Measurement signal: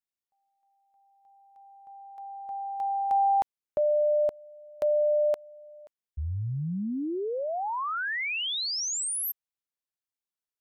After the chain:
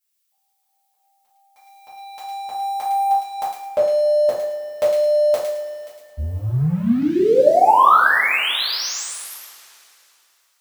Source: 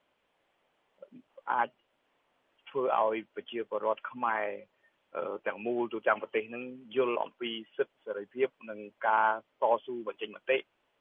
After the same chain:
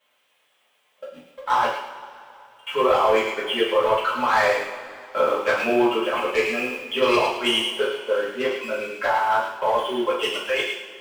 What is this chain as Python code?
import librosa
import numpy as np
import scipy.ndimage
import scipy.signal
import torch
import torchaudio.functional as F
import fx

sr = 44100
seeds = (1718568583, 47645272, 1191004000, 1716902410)

p1 = fx.tilt_eq(x, sr, slope=3.5)
p2 = fx.over_compress(p1, sr, threshold_db=-30.0, ratio=-0.5)
p3 = fx.leveller(p2, sr, passes=2)
p4 = fx.dynamic_eq(p3, sr, hz=2500.0, q=0.92, threshold_db=-38.0, ratio=4.0, max_db=-4)
p5 = p4 + fx.echo_wet_highpass(p4, sr, ms=107, feedback_pct=31, hz=2100.0, wet_db=-3.5, dry=0)
p6 = fx.rev_double_slope(p5, sr, seeds[0], early_s=0.46, late_s=2.9, knee_db=-19, drr_db=-8.5)
y = F.gain(torch.from_numpy(p6), -1.0).numpy()